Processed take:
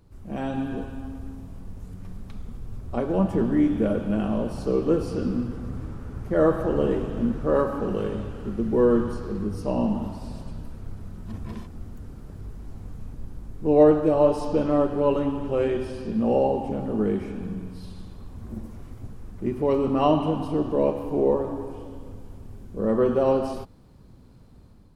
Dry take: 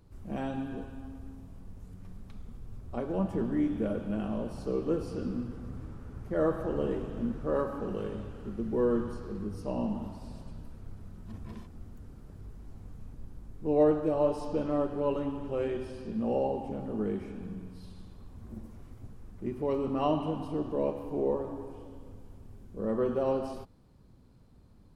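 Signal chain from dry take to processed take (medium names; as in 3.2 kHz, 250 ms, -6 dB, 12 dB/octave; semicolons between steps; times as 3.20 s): level rider gain up to 5.5 dB; trim +2.5 dB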